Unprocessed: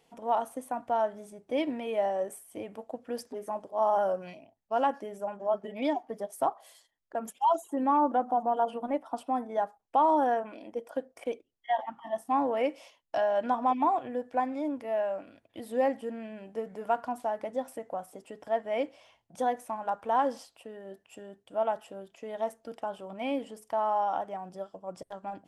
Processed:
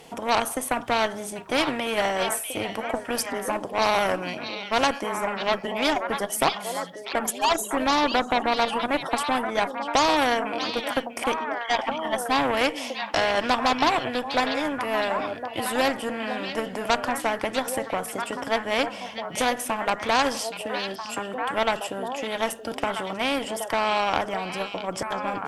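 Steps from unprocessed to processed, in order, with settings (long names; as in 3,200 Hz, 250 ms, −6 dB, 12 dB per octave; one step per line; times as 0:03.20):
harmonic generator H 6 −42 dB, 7 −26 dB, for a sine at −14.5 dBFS
echo through a band-pass that steps 644 ms, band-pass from 3,600 Hz, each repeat −1.4 octaves, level −7 dB
every bin compressed towards the loudest bin 2 to 1
level +7 dB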